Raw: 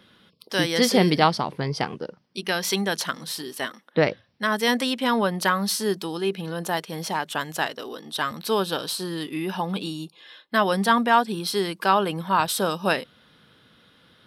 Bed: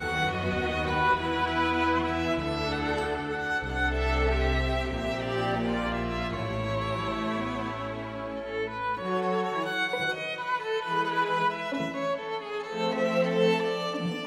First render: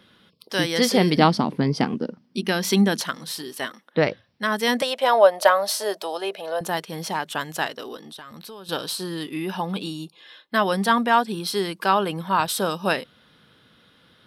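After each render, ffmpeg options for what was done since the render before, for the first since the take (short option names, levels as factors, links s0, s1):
-filter_complex "[0:a]asettb=1/sr,asplit=3[s0][s1][s2];[s0]atrim=end=1.174[s3];[s1]atrim=start=1.17:end=3.01,asetpts=PTS-STARTPTS,afade=t=in:d=0.004:c=qsin,afade=t=out:st=1.836:d=0.004:c=qsin,equalizer=f=240:w=1.7:g=14.5[s4];[s2]atrim=start=3.006[s5];[s3][s4]acrossfade=d=0.004:c1=hsin:c2=qsin[s6];[s6][s5]acrossfade=d=0.004:c1=qsin:c2=hsin,asettb=1/sr,asplit=3[s7][s8][s9];[s7]atrim=end=4.824[s10];[s8]atrim=start=4.82:end=6.61,asetpts=PTS-STARTPTS,afade=t=in:d=0.004:c=qsin,afade=t=out:st=1.786:d=0.004:c=qsin,highpass=f=620:t=q:w=7.7[s11];[s9]atrim=start=6.606[s12];[s10][s11]acrossfade=d=0.004:c1=hsin:c2=qsin[s13];[s13][s12]acrossfade=d=0.004:c1=qsin:c2=hsin,asettb=1/sr,asplit=3[s14][s15][s16];[s14]atrim=end=7.964[s17];[s15]atrim=start=7.96:end=8.69,asetpts=PTS-STARTPTS,afade=t=in:d=0.004:c=qsin,afade=t=out:st=0.726:d=0.004:c=qsin,acompressor=threshold=0.0141:ratio=8:attack=3.2:release=140:knee=1:detection=peak[s18];[s16]atrim=start=8.686[s19];[s17][s18]acrossfade=d=0.004:c1=hsin:c2=qsin[s20];[s20][s19]acrossfade=d=0.004:c1=qsin:c2=hsin"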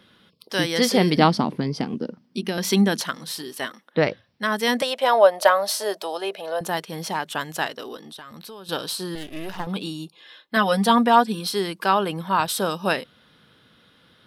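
-filter_complex "[0:a]asettb=1/sr,asplit=3[s0][s1][s2];[s0]atrim=end=1.554[s3];[s1]atrim=start=1.55:end=2.58,asetpts=PTS-STARTPTS,afade=t=in:d=0.004:c=qsin,afade=t=out:st=1.026:d=0.004:c=qsin,acrossover=split=760|2600[s4][s5][s6];[s4]acompressor=threshold=0.0794:ratio=4[s7];[s5]acompressor=threshold=0.01:ratio=4[s8];[s6]acompressor=threshold=0.0178:ratio=4[s9];[s7][s8][s9]amix=inputs=3:normalize=0[s10];[s2]atrim=start=2.576[s11];[s3][s10]acrossfade=d=0.004:c1=hsin:c2=qsin[s12];[s12][s11]acrossfade=d=0.004:c1=qsin:c2=hsin,asettb=1/sr,asplit=3[s13][s14][s15];[s13]atrim=end=9.154[s16];[s14]atrim=start=9.15:end=9.67,asetpts=PTS-STARTPTS,afade=t=in:d=0.004:c=qsin,afade=t=out:st=0.516:d=0.004:c=qsin,aeval=exprs='max(val(0),0)':c=same[s17];[s15]atrim=start=9.666[s18];[s16][s17]acrossfade=d=0.004:c1=hsin:c2=qsin[s19];[s19][s18]acrossfade=d=0.004:c1=qsin:c2=hsin,asettb=1/sr,asplit=3[s20][s21][s22];[s20]atrim=end=10.564[s23];[s21]atrim=start=10.56:end=11.49,asetpts=PTS-STARTPTS,afade=t=in:d=0.004:c=qsin,afade=t=out:st=0.926:d=0.004:c=qsin,aecho=1:1:4.1:0.73,atrim=end_sample=41013[s24];[s22]atrim=start=11.486[s25];[s23][s24]acrossfade=d=0.004:c1=hsin:c2=qsin[s26];[s26][s25]acrossfade=d=0.004:c1=qsin:c2=hsin"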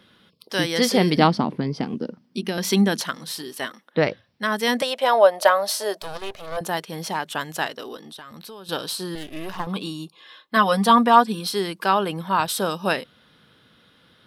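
-filter_complex "[0:a]asettb=1/sr,asplit=3[s0][s1][s2];[s0]atrim=end=1.274[s3];[s1]atrim=start=1.27:end=1.83,asetpts=PTS-STARTPTS,afade=t=in:d=0.004:c=qsin,afade=t=out:st=0.556:d=0.004:c=qsin,highshelf=f=6100:g=-11[s4];[s2]atrim=start=1.826[s5];[s3][s4]acrossfade=d=0.004:c1=hsin:c2=qsin[s6];[s6][s5]acrossfade=d=0.004:c1=qsin:c2=hsin,asplit=3[s7][s8][s9];[s7]afade=t=out:st=6.01:d=0.02[s10];[s8]aeval=exprs='max(val(0),0)':c=same,afade=t=in:st=6.01:d=0.02,afade=t=out:st=6.56:d=0.02[s11];[s9]afade=t=in:st=6.56:d=0.02[s12];[s10][s11][s12]amix=inputs=3:normalize=0,asettb=1/sr,asplit=3[s13][s14][s15];[s13]atrim=end=9.414[s16];[s14]atrim=start=9.41:end=11.31,asetpts=PTS-STARTPTS,afade=t=in:d=0.004:c=qsin,afade=t=out:st=1.896:d=0.004:c=qsin,equalizer=f=1100:w=7.4:g=9.5[s17];[s15]atrim=start=11.306[s18];[s16][s17]acrossfade=d=0.004:c1=hsin:c2=qsin[s19];[s19][s18]acrossfade=d=0.004:c1=qsin:c2=hsin"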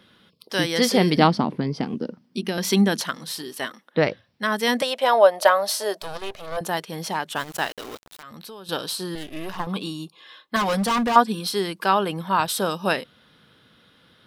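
-filter_complex "[0:a]asettb=1/sr,asplit=3[s0][s1][s2];[s0]atrim=end=7.364[s3];[s1]atrim=start=7.36:end=8.23,asetpts=PTS-STARTPTS,afade=t=in:d=0.004:c=qsin,afade=t=out:st=0.866:d=0.004:c=qsin,aeval=exprs='val(0)*gte(abs(val(0)),0.0188)':c=same[s4];[s2]atrim=start=8.226[s5];[s3][s4]acrossfade=d=0.004:c1=hsin:c2=qsin[s6];[s6][s5]acrossfade=d=0.004:c1=qsin:c2=hsin,asettb=1/sr,asplit=3[s7][s8][s9];[s7]atrim=end=10.564[s10];[s8]atrim=start=10.56:end=11.16,asetpts=PTS-STARTPTS,afade=t=in:d=0.004:c=qsin,afade=t=out:st=0.596:d=0.004:c=qsin,asoftclip=type=hard:threshold=0.106[s11];[s9]atrim=start=11.156[s12];[s10][s11]acrossfade=d=0.004:c1=hsin:c2=qsin[s13];[s13][s12]acrossfade=d=0.004:c1=qsin:c2=hsin"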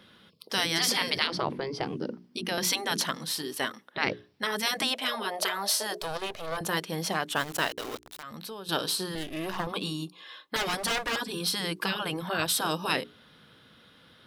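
-af "bandreject=f=60:t=h:w=6,bandreject=f=120:t=h:w=6,bandreject=f=180:t=h:w=6,bandreject=f=240:t=h:w=6,bandreject=f=300:t=h:w=6,bandreject=f=360:t=h:w=6,bandreject=f=420:t=h:w=6,afftfilt=real='re*lt(hypot(re,im),0.282)':imag='im*lt(hypot(re,im),0.282)':win_size=1024:overlap=0.75"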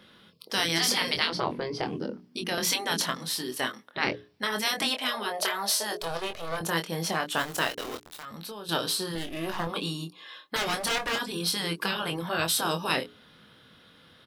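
-filter_complex "[0:a]asplit=2[s0][s1];[s1]adelay=24,volume=0.473[s2];[s0][s2]amix=inputs=2:normalize=0"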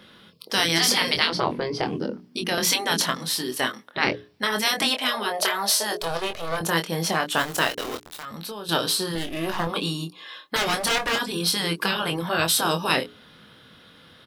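-af "volume=1.78"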